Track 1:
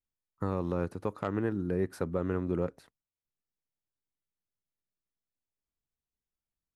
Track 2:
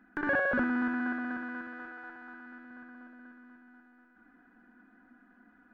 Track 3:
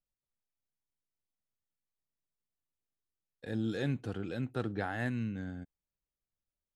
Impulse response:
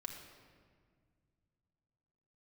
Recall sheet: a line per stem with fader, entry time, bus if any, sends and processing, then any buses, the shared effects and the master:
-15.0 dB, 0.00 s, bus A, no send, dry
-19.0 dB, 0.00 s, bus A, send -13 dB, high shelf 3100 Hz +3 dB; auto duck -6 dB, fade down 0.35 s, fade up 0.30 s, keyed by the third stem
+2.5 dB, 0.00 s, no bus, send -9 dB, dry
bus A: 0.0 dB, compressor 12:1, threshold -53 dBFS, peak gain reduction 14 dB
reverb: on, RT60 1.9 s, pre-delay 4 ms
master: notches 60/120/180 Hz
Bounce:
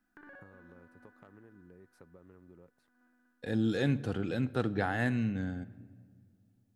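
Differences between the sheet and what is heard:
stem 1 -15.0 dB -> -3.0 dB; master: missing notches 60/120/180 Hz

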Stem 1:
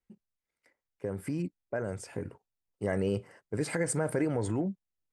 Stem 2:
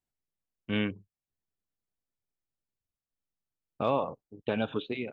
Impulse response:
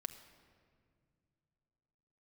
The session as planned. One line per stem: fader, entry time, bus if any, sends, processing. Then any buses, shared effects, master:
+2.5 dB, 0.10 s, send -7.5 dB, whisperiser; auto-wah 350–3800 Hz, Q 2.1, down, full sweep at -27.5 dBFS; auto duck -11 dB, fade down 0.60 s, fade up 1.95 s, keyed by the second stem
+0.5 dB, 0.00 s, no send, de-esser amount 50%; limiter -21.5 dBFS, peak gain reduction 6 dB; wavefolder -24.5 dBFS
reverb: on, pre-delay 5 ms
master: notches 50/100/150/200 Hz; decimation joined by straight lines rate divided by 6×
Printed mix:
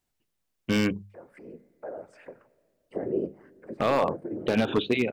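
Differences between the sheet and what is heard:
stem 2 +0.5 dB -> +10.0 dB; master: missing decimation joined by straight lines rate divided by 6×

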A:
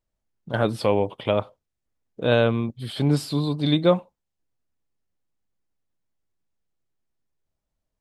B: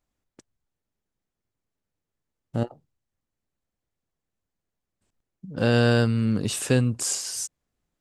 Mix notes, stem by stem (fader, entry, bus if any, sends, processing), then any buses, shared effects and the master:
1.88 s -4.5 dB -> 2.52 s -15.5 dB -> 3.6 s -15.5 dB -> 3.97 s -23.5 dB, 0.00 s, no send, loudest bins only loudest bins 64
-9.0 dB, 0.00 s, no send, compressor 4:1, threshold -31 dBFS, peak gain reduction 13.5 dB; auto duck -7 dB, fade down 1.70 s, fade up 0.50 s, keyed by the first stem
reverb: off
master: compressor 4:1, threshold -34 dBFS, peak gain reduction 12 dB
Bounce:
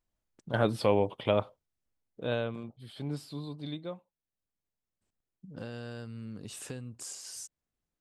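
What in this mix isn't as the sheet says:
stem A: missing loudest bins only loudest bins 64; master: missing compressor 4:1, threshold -34 dBFS, peak gain reduction 12 dB

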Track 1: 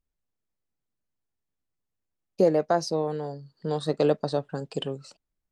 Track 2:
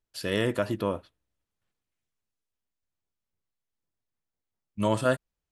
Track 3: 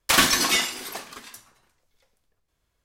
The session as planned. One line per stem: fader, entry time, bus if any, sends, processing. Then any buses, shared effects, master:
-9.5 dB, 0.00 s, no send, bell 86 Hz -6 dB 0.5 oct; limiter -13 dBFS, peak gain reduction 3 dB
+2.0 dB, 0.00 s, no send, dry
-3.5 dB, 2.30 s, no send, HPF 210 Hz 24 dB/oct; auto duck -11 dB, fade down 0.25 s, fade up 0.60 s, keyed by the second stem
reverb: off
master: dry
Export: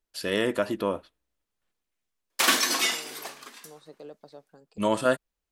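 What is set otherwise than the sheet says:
stem 1 -9.5 dB -> -20.0 dB; master: extra bell 110 Hz -13.5 dB 0.82 oct

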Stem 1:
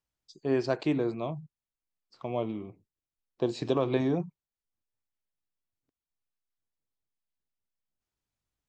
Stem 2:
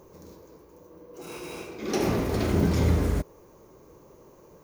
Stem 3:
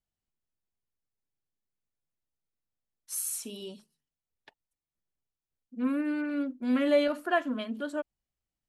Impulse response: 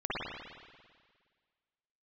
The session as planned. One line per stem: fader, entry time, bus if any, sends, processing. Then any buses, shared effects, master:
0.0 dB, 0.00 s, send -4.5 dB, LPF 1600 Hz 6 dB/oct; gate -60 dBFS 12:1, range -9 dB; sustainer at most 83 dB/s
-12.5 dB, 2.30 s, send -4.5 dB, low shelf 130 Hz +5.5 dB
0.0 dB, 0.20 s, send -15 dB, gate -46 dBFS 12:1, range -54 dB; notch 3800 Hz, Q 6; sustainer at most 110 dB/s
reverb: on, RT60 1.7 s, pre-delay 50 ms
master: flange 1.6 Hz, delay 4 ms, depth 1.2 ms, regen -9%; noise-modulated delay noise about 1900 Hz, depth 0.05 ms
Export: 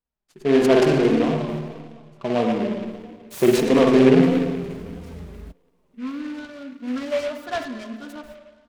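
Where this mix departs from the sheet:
stem 1 0.0 dB -> +9.0 dB; stem 2: send off

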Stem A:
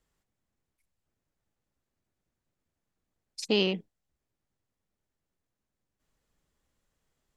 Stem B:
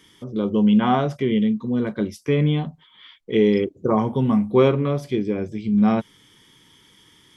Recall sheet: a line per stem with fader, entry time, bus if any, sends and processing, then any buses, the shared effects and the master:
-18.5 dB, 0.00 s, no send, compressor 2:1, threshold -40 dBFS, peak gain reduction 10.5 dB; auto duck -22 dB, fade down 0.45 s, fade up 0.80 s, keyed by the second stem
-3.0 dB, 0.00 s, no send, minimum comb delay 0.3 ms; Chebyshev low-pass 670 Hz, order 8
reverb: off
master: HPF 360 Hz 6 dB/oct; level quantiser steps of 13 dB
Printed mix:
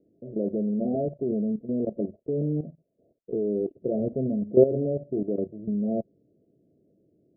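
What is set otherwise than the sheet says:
stem A -18.5 dB -> -28.5 dB; stem B -3.0 dB -> +4.5 dB

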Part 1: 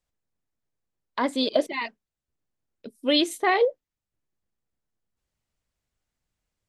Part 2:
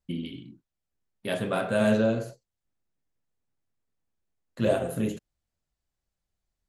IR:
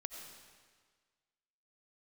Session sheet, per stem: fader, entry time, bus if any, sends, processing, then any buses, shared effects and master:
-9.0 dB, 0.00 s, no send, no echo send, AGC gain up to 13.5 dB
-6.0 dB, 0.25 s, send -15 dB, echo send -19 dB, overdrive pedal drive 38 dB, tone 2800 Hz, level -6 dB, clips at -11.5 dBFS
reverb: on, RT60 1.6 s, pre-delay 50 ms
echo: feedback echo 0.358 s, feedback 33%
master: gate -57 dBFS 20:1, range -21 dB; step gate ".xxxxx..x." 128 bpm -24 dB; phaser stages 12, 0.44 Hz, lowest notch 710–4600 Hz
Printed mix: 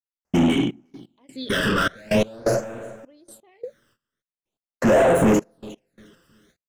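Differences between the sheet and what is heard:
stem 1 -9.0 dB -> -15.5 dB; stem 2 -6.0 dB -> +1.0 dB

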